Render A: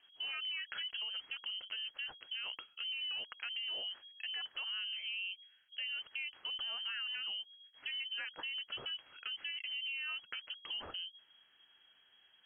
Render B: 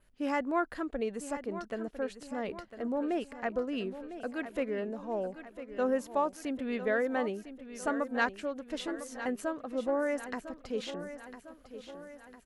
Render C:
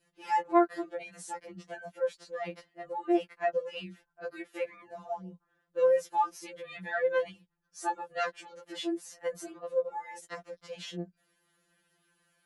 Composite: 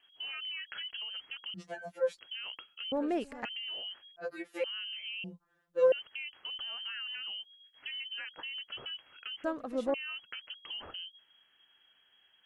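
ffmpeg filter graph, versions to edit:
-filter_complex "[2:a]asplit=3[s0][s1][s2];[1:a]asplit=2[s3][s4];[0:a]asplit=6[s5][s6][s7][s8][s9][s10];[s5]atrim=end=1.542[s11];[s0]atrim=start=1.538:end=2.192[s12];[s6]atrim=start=2.188:end=2.922[s13];[s3]atrim=start=2.918:end=3.452[s14];[s7]atrim=start=3.448:end=4.162[s15];[s1]atrim=start=4.158:end=4.642[s16];[s8]atrim=start=4.638:end=5.242[s17];[s2]atrim=start=5.238:end=5.922[s18];[s9]atrim=start=5.918:end=9.442[s19];[s4]atrim=start=9.438:end=9.942[s20];[s10]atrim=start=9.938[s21];[s11][s12]acrossfade=d=0.004:c1=hsin:c2=hsin[s22];[s22][s13]acrossfade=d=0.004:c1=hsin:c2=hsin[s23];[s23][s14]acrossfade=d=0.004:c1=hsin:c2=hsin[s24];[s24][s15]acrossfade=d=0.004:c1=hsin:c2=hsin[s25];[s25][s16]acrossfade=d=0.004:c1=hsin:c2=hsin[s26];[s26][s17]acrossfade=d=0.004:c1=hsin:c2=hsin[s27];[s27][s18]acrossfade=d=0.004:c1=hsin:c2=hsin[s28];[s28][s19]acrossfade=d=0.004:c1=hsin:c2=hsin[s29];[s29][s20]acrossfade=d=0.004:c1=hsin:c2=hsin[s30];[s30][s21]acrossfade=d=0.004:c1=hsin:c2=hsin"

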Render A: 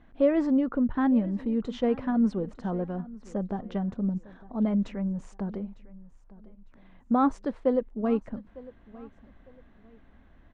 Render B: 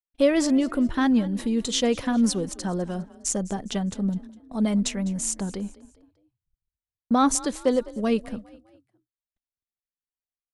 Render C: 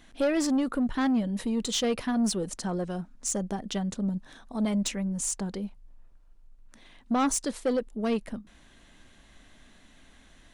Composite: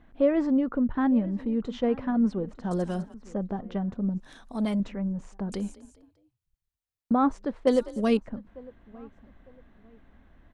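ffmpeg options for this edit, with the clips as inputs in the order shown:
-filter_complex "[1:a]asplit=3[s0][s1][s2];[0:a]asplit=5[s3][s4][s5][s6][s7];[s3]atrim=end=2.712[s8];[s0]atrim=start=2.708:end=3.142[s9];[s4]atrim=start=3.138:end=4.202[s10];[2:a]atrim=start=4.198:end=4.802[s11];[s5]atrim=start=4.798:end=5.522[s12];[s1]atrim=start=5.518:end=7.122[s13];[s6]atrim=start=7.118:end=7.672[s14];[s2]atrim=start=7.668:end=8.172[s15];[s7]atrim=start=8.168[s16];[s8][s9]acrossfade=d=0.004:c1=hsin:c2=hsin[s17];[s17][s10]acrossfade=d=0.004:c1=hsin:c2=hsin[s18];[s18][s11]acrossfade=d=0.004:c1=hsin:c2=hsin[s19];[s19][s12]acrossfade=d=0.004:c1=hsin:c2=hsin[s20];[s20][s13]acrossfade=d=0.004:c1=hsin:c2=hsin[s21];[s21][s14]acrossfade=d=0.004:c1=hsin:c2=hsin[s22];[s22][s15]acrossfade=d=0.004:c1=hsin:c2=hsin[s23];[s23][s16]acrossfade=d=0.004:c1=hsin:c2=hsin"

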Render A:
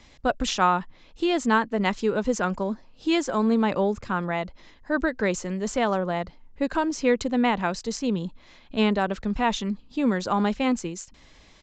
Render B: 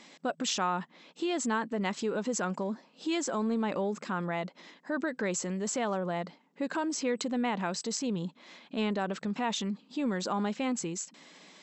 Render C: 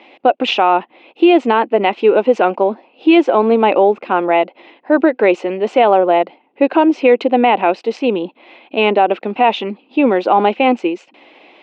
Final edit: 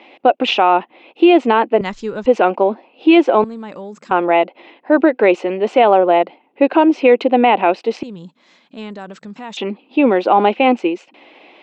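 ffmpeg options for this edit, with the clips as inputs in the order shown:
-filter_complex "[1:a]asplit=2[s0][s1];[2:a]asplit=4[s2][s3][s4][s5];[s2]atrim=end=1.812[s6];[0:a]atrim=start=1.808:end=2.262[s7];[s3]atrim=start=2.258:end=3.442[s8];[s0]atrim=start=3.438:end=4.112[s9];[s4]atrim=start=4.108:end=8.032[s10];[s1]atrim=start=8.028:end=9.572[s11];[s5]atrim=start=9.568[s12];[s6][s7]acrossfade=d=0.004:c1=hsin:c2=hsin[s13];[s13][s8]acrossfade=d=0.004:c1=hsin:c2=hsin[s14];[s14][s9]acrossfade=d=0.004:c1=hsin:c2=hsin[s15];[s15][s10]acrossfade=d=0.004:c1=hsin:c2=hsin[s16];[s16][s11]acrossfade=d=0.004:c1=hsin:c2=hsin[s17];[s17][s12]acrossfade=d=0.004:c1=hsin:c2=hsin"

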